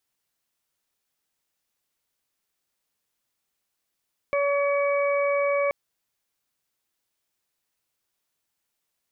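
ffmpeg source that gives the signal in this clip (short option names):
-f lavfi -i "aevalsrc='0.0841*sin(2*PI*567*t)+0.0335*sin(2*PI*1134*t)+0.00891*sin(2*PI*1701*t)+0.0335*sin(2*PI*2268*t)':d=1.38:s=44100"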